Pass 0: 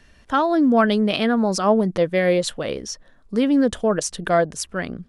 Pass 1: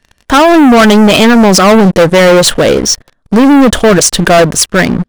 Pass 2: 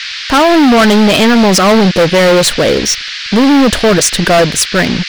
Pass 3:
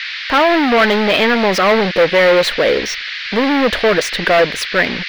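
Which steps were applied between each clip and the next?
leveller curve on the samples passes 5; level +4.5 dB
noise in a band 1,500–5,000 Hz −19 dBFS; level −3 dB
octave-band graphic EQ 125/500/1,000/2,000/4,000/8,000 Hz −6/+7/+3/+10/+5/−11 dB; level −10 dB

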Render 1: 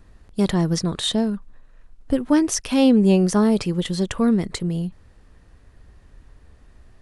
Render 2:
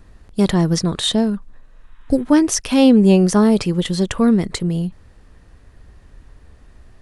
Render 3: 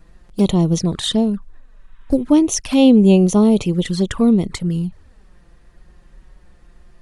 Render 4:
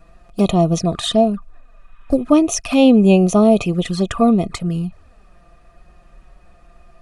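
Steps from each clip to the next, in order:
healed spectral selection 0:01.70–0:02.21, 840–3,900 Hz both; level +4 dB
flanger swept by the level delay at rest 6.6 ms, full sweep at −13.5 dBFS; level +1 dB
hollow resonant body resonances 680/1,200/2,500 Hz, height 16 dB, ringing for 45 ms; level −1 dB

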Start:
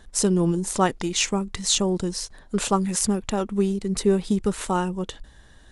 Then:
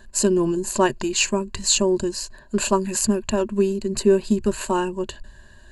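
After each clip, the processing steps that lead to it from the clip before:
EQ curve with evenly spaced ripples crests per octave 1.4, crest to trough 13 dB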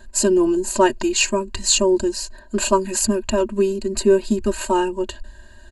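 comb filter 3.2 ms, depth 80%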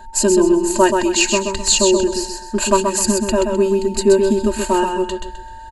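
steady tone 900 Hz −40 dBFS
repeating echo 129 ms, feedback 31%, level −5 dB
level +2 dB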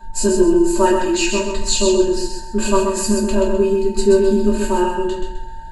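mains hum 50 Hz, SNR 30 dB
rectangular room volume 33 cubic metres, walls mixed, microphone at 1.1 metres
level −9.5 dB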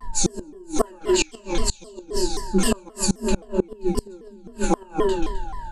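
gate with flip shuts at −7 dBFS, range −29 dB
pitch modulation by a square or saw wave saw down 3.8 Hz, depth 250 cents

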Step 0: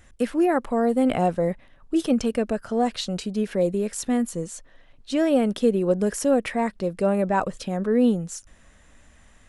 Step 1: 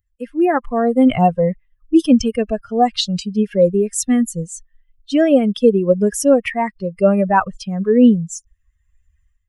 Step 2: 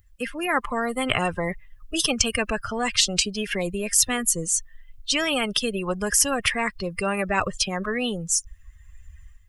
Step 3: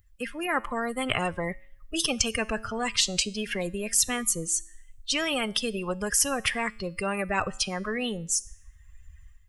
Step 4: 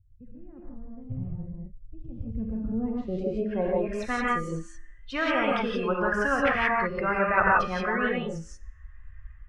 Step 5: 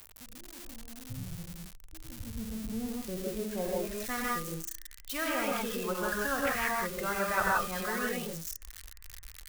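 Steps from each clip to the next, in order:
spectral dynamics exaggerated over time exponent 2; automatic gain control gain up to 14.5 dB
every bin compressed towards the loudest bin 4 to 1
tuned comb filter 110 Hz, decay 0.63 s, harmonics all, mix 40%
low-pass filter sweep 120 Hz → 1,500 Hz, 0:02.15–0:04.02; reverb whose tail is shaped and stops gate 200 ms rising, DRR −3.5 dB; level −1.5 dB
spike at every zero crossing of −21.5 dBFS; level −7 dB

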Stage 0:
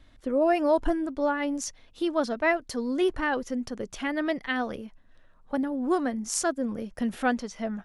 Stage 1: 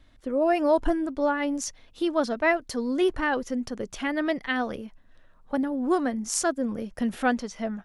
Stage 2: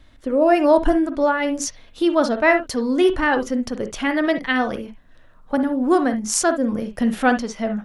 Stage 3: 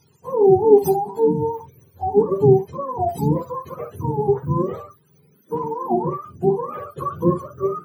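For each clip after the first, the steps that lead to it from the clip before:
automatic gain control gain up to 3 dB; level −1.5 dB
convolution reverb, pre-delay 43 ms, DRR 9 dB; level +6.5 dB
frequency axis turned over on the octave scale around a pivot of 510 Hz; graphic EQ with 15 bands 160 Hz +6 dB, 400 Hz +11 dB, 1,600 Hz +6 dB; level −6 dB

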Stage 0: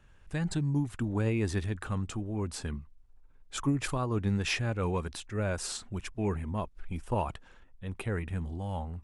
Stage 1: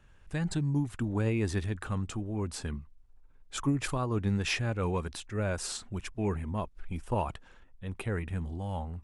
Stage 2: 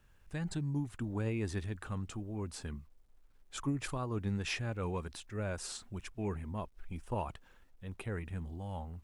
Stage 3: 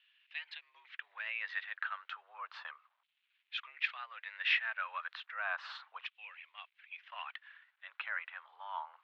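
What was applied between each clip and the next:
no processing that can be heard
bit-depth reduction 12 bits, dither none; level −6 dB
auto-filter high-pass saw down 0.33 Hz 930–2,800 Hz; single-sideband voice off tune +91 Hz 530–3,600 Hz; level +4.5 dB

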